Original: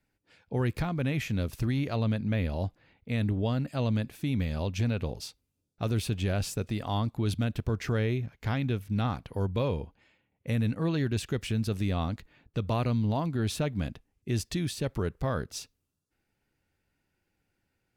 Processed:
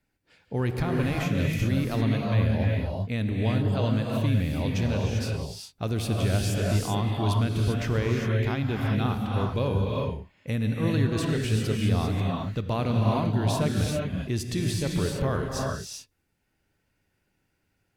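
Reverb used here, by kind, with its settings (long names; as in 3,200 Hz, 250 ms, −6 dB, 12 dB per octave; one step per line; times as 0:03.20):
reverb whose tail is shaped and stops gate 420 ms rising, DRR −1 dB
level +1 dB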